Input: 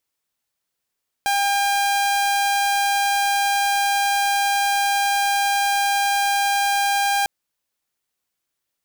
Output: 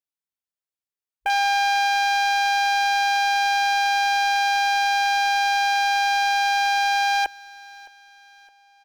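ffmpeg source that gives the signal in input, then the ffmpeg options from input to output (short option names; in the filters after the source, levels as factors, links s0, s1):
-f lavfi -i "aevalsrc='0.178*(2*mod(802*t,1)-1)':d=6:s=44100"
-af "afwtdn=0.0316,aecho=1:1:614|1228|1842:0.0841|0.0379|0.017"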